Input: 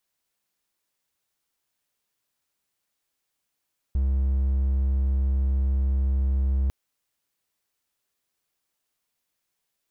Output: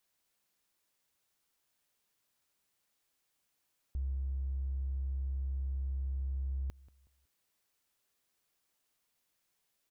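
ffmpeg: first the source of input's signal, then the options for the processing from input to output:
-f lavfi -i "aevalsrc='0.126*(1-4*abs(mod(66.8*t+0.25,1)-0.5))':duration=2.75:sample_rate=44100"
-filter_complex "[0:a]alimiter=level_in=4dB:limit=-24dB:level=0:latency=1:release=97,volume=-4dB,asoftclip=type=tanh:threshold=-30dB,asplit=2[link_01][link_02];[link_02]adelay=185,lowpass=frequency=2000:poles=1,volume=-20.5dB,asplit=2[link_03][link_04];[link_04]adelay=185,lowpass=frequency=2000:poles=1,volume=0.33,asplit=2[link_05][link_06];[link_06]adelay=185,lowpass=frequency=2000:poles=1,volume=0.33[link_07];[link_01][link_03][link_05][link_07]amix=inputs=4:normalize=0"

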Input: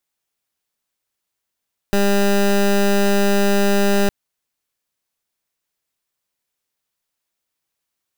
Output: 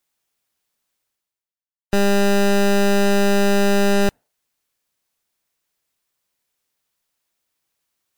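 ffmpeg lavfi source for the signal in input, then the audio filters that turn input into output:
-f lavfi -i "aevalsrc='0.178*(2*lt(mod(200*t,1),0.18)-1)':duration=2.16:sample_rate=44100"
-af "areverse,acompressor=mode=upward:threshold=-28dB:ratio=2.5,areverse,afftdn=noise_reduction=25:noise_floor=-37"

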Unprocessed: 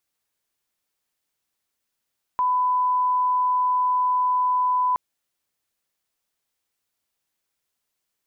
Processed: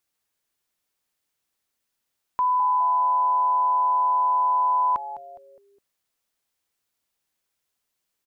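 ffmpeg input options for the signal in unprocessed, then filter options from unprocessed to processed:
-f lavfi -i "sine=frequency=1000:duration=2.57:sample_rate=44100,volume=0.06dB"
-filter_complex "[0:a]asplit=5[link_01][link_02][link_03][link_04][link_05];[link_02]adelay=206,afreqshift=-150,volume=-13.5dB[link_06];[link_03]adelay=412,afreqshift=-300,volume=-21.9dB[link_07];[link_04]adelay=618,afreqshift=-450,volume=-30.3dB[link_08];[link_05]adelay=824,afreqshift=-600,volume=-38.7dB[link_09];[link_01][link_06][link_07][link_08][link_09]amix=inputs=5:normalize=0"

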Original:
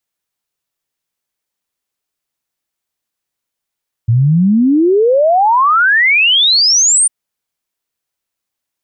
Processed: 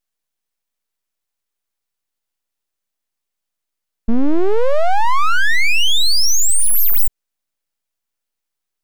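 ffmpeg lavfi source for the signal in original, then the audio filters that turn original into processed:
-f lavfi -i "aevalsrc='0.447*clip(min(t,3-t)/0.01,0,1)*sin(2*PI*110*3/log(9300/110)*(exp(log(9300/110)*t/3)-1))':duration=3:sample_rate=44100"
-af "aeval=exprs='abs(val(0))':channel_layout=same"

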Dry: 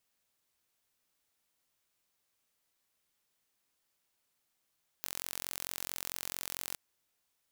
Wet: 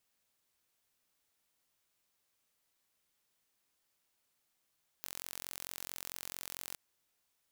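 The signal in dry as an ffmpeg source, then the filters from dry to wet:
-f lavfi -i "aevalsrc='0.282*eq(mod(n,991),0)':duration=1.71:sample_rate=44100"
-af "alimiter=limit=-15.5dB:level=0:latency=1:release=52"

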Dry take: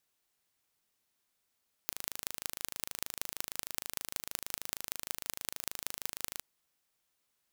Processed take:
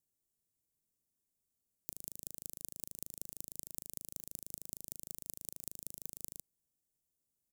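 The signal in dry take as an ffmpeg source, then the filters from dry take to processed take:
-f lavfi -i "aevalsrc='0.531*eq(mod(n,1670),0)*(0.5+0.5*eq(mod(n,8350),0))':duration=4.54:sample_rate=44100"
-af "firequalizer=gain_entry='entry(140,0);entry(1300,-27);entry(7300,-5)':delay=0.05:min_phase=1"

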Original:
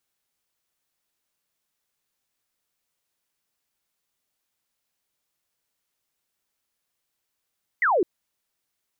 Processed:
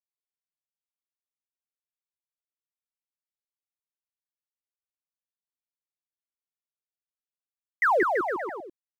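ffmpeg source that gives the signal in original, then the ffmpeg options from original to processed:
-f lavfi -i "aevalsrc='0.133*clip(t/0.002,0,1)*clip((0.21-t)/0.002,0,1)*sin(2*PI*2100*0.21/log(320/2100)*(exp(log(320/2100)*t/0.21)-1))':duration=0.21:sample_rate=44100"
-filter_complex "[0:a]lowshelf=frequency=130:gain=-7.5,aeval=exprs='sgn(val(0))*max(abs(val(0))-0.00447,0)':channel_layout=same,asplit=2[link_01][link_02];[link_02]aecho=0:1:180|333|463|573.6|667.6:0.631|0.398|0.251|0.158|0.1[link_03];[link_01][link_03]amix=inputs=2:normalize=0"

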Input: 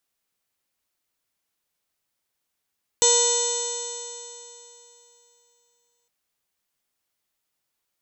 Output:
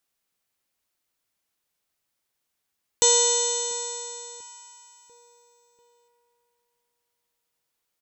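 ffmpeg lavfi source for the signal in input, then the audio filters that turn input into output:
-f lavfi -i "aevalsrc='0.0891*pow(10,-3*t/3.12)*sin(2*PI*475.81*t)+0.0501*pow(10,-3*t/3.12)*sin(2*PI*956.44*t)+0.00891*pow(10,-3*t/3.12)*sin(2*PI*1446.64*t)+0.0133*pow(10,-3*t/3.12)*sin(2*PI*1951*t)+0.00891*pow(10,-3*t/3.12)*sin(2*PI*2473.88*t)+0.0316*pow(10,-3*t/3.12)*sin(2*PI*3019.39*t)+0.0473*pow(10,-3*t/3.12)*sin(2*PI*3591.31*t)+0.0447*pow(10,-3*t/3.12)*sin(2*PI*4193.11*t)+0.0141*pow(10,-3*t/3.12)*sin(2*PI*4827.91*t)+0.0282*pow(10,-3*t/3.12)*sin(2*PI*5498.52*t)+0.0944*pow(10,-3*t/3.12)*sin(2*PI*6207.42*t)+0.0708*pow(10,-3*t/3.12)*sin(2*PI*6956.8*t)+0.126*pow(10,-3*t/3.12)*sin(2*PI*7748.58*t)':duration=3.06:sample_rate=44100"
-filter_complex "[0:a]asplit=2[link_01][link_02];[link_02]adelay=692,lowpass=frequency=2800:poles=1,volume=-20dB,asplit=2[link_03][link_04];[link_04]adelay=692,lowpass=frequency=2800:poles=1,volume=0.5,asplit=2[link_05][link_06];[link_06]adelay=692,lowpass=frequency=2800:poles=1,volume=0.5,asplit=2[link_07][link_08];[link_08]adelay=692,lowpass=frequency=2800:poles=1,volume=0.5[link_09];[link_01][link_03][link_05][link_07][link_09]amix=inputs=5:normalize=0"

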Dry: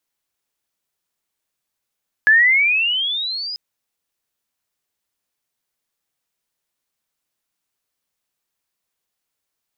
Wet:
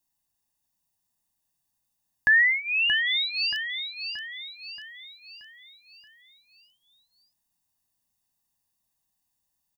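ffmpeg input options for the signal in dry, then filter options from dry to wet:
-f lavfi -i "aevalsrc='pow(10,(-8-17*t/1.29)/20)*sin(2*PI*1690*1.29/(19*log(2)/12)*(exp(19*log(2)/12*t/1.29)-1))':duration=1.29:sample_rate=44100"
-filter_complex "[0:a]equalizer=frequency=2000:width=0.5:gain=-10.5,aecho=1:1:1.1:0.8,asplit=2[link_01][link_02];[link_02]aecho=0:1:628|1256|1884|2512|3140|3768:0.422|0.202|0.0972|0.0466|0.0224|0.0107[link_03];[link_01][link_03]amix=inputs=2:normalize=0"

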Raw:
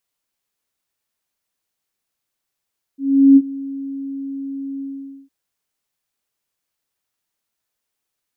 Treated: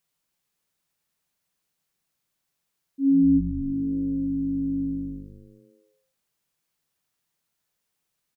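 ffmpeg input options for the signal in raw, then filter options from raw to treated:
-f lavfi -i "aevalsrc='0.631*sin(2*PI*274*t)':duration=2.309:sample_rate=44100,afade=type=in:duration=0.385,afade=type=out:start_time=0.385:duration=0.047:silence=0.0944,afade=type=out:start_time=1.83:duration=0.479"
-filter_complex "[0:a]equalizer=frequency=160:width_type=o:width=0.5:gain=10,alimiter=limit=-14.5dB:level=0:latency=1:release=405,asplit=9[link_01][link_02][link_03][link_04][link_05][link_06][link_07][link_08][link_09];[link_02]adelay=109,afreqshift=-100,volume=-12dB[link_10];[link_03]adelay=218,afreqshift=-200,volume=-15.9dB[link_11];[link_04]adelay=327,afreqshift=-300,volume=-19.8dB[link_12];[link_05]adelay=436,afreqshift=-400,volume=-23.6dB[link_13];[link_06]adelay=545,afreqshift=-500,volume=-27.5dB[link_14];[link_07]adelay=654,afreqshift=-600,volume=-31.4dB[link_15];[link_08]adelay=763,afreqshift=-700,volume=-35.3dB[link_16];[link_09]adelay=872,afreqshift=-800,volume=-39.1dB[link_17];[link_01][link_10][link_11][link_12][link_13][link_14][link_15][link_16][link_17]amix=inputs=9:normalize=0"

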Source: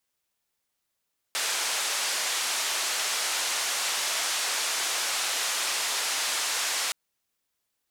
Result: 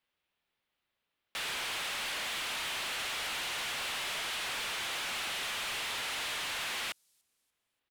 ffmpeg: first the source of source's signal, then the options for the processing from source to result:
-f lavfi -i "anoisesrc=color=white:duration=5.57:sample_rate=44100:seed=1,highpass=frequency=640,lowpass=frequency=7900,volume=-19dB"
-filter_complex "[0:a]highshelf=frequency=4600:width_type=q:width=1.5:gain=-13,acrossover=split=170|7000[link_01][link_02][link_03];[link_02]asoftclip=type=hard:threshold=-35.5dB[link_04];[link_03]aecho=1:1:291|582|873:0.0794|0.031|0.0121[link_05];[link_01][link_04][link_05]amix=inputs=3:normalize=0"

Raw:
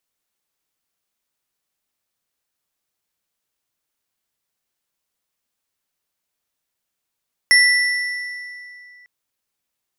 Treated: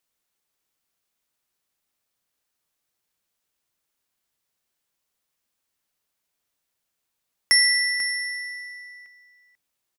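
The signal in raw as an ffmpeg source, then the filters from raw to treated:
-f lavfi -i "aevalsrc='0.355*pow(10,-3*t/2.56)*sin(2*PI*1970*t)+0.2*pow(10,-3*t/1.888)*sin(2*PI*5431.3*t)+0.112*pow(10,-3*t/1.543)*sin(2*PI*10645.9*t)':duration=1.55:sample_rate=44100"
-filter_complex "[0:a]acrossover=split=390|3000[link_01][link_02][link_03];[link_02]acompressor=threshold=-32dB:ratio=2[link_04];[link_01][link_04][link_03]amix=inputs=3:normalize=0,aecho=1:1:491:0.211"

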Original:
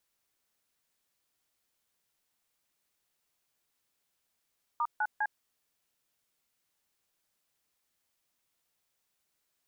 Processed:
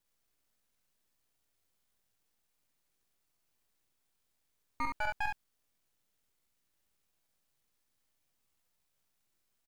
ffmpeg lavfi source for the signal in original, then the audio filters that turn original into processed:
-f lavfi -i "aevalsrc='0.0335*clip(min(mod(t,0.202),0.054-mod(t,0.202))/0.002,0,1)*(eq(floor(t/0.202),0)*(sin(2*PI*941*mod(t,0.202))+sin(2*PI*1209*mod(t,0.202)))+eq(floor(t/0.202),1)*(sin(2*PI*852*mod(t,0.202))+sin(2*PI*1477*mod(t,0.202)))+eq(floor(t/0.202),2)*(sin(2*PI*852*mod(t,0.202))+sin(2*PI*1633*mod(t,0.202))))':duration=0.606:sample_rate=44100"
-af "lowshelf=frequency=350:gain=9,aeval=exprs='max(val(0),0)':channel_layout=same,aecho=1:1:47|68:0.501|0.596"

